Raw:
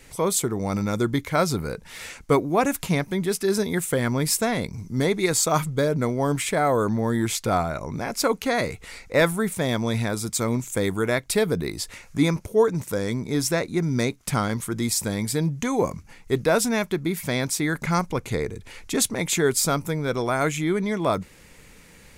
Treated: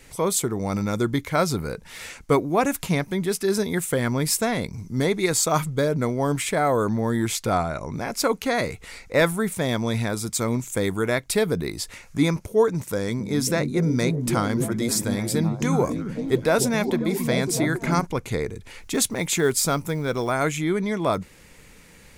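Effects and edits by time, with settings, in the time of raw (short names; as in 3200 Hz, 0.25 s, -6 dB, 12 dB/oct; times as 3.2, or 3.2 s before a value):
7.52–7.93 brick-wall FIR low-pass 12000 Hz
12.81–18.07 delay with a stepping band-pass 0.273 s, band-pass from 170 Hz, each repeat 0.7 oct, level -0.5 dB
18.8–20.32 short-mantissa float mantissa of 4-bit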